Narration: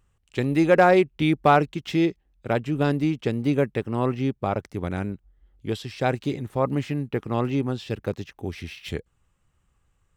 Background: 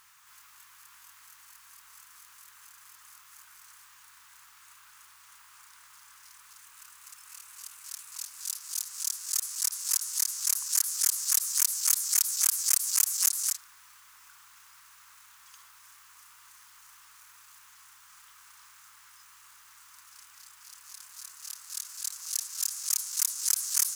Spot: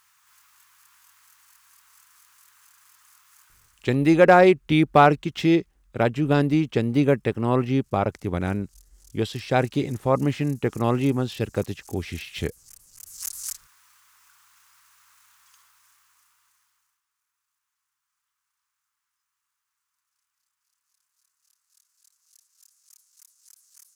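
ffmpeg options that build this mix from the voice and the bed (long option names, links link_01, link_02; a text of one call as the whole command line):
ffmpeg -i stem1.wav -i stem2.wav -filter_complex "[0:a]adelay=3500,volume=2.5dB[link_01];[1:a]volume=18dB,afade=type=out:start_time=3.43:duration=0.57:silence=0.0841395,afade=type=in:start_time=12.98:duration=0.5:silence=0.0841395,afade=type=out:start_time=15.34:duration=1.68:silence=0.0668344[link_02];[link_01][link_02]amix=inputs=2:normalize=0" out.wav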